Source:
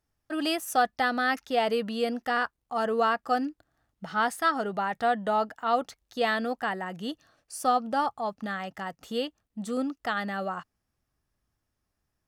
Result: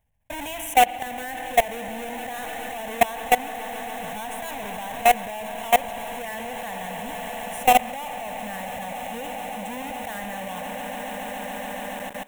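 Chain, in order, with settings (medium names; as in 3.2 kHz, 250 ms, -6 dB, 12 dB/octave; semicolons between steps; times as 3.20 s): square wave that keeps the level; static phaser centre 1.3 kHz, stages 6; on a send: echo with a slow build-up 141 ms, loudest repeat 8, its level -16.5 dB; on the sum: spring tank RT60 3.3 s, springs 48 ms, chirp 30 ms, DRR 9 dB; level held to a coarse grid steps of 20 dB; trim +7.5 dB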